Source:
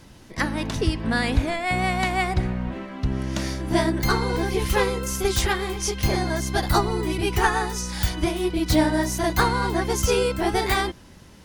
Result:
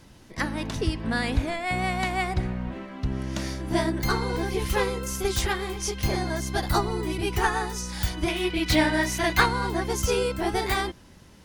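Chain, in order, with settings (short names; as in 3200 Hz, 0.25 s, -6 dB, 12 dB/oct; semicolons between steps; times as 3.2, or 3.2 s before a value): 8.28–9.46 bell 2400 Hz +11 dB 1.5 oct; gain -3.5 dB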